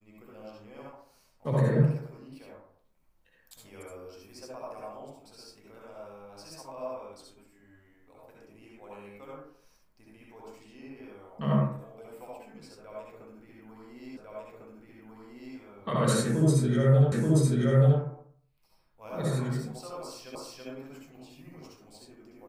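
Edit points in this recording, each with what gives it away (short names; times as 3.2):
14.17 repeat of the last 1.4 s
17.12 repeat of the last 0.88 s
20.35 repeat of the last 0.33 s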